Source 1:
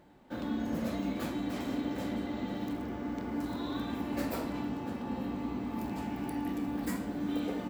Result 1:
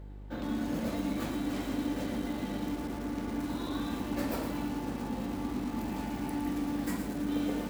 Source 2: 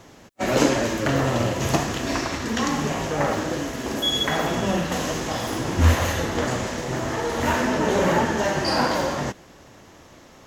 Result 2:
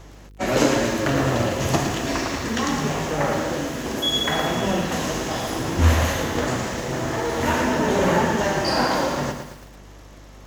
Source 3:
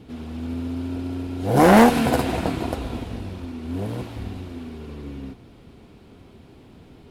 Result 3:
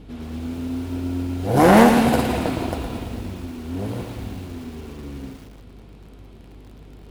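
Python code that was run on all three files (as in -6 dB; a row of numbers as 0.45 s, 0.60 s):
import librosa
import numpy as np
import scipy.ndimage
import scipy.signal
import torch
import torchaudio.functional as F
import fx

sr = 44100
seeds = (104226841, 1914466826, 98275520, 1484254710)

y = fx.dmg_buzz(x, sr, base_hz=50.0, harmonics=10, level_db=-45.0, tilt_db=-8, odd_only=False)
y = fx.echo_crushed(y, sr, ms=113, feedback_pct=55, bits=7, wet_db=-7)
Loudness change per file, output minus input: +1.0 LU, +1.0 LU, +1.0 LU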